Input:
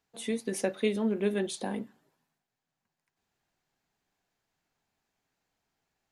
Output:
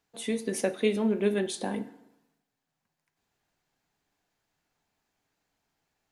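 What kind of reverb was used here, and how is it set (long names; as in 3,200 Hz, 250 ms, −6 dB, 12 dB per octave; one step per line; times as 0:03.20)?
feedback delay network reverb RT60 0.86 s, low-frequency decay 1×, high-frequency decay 0.7×, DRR 12 dB
level +2 dB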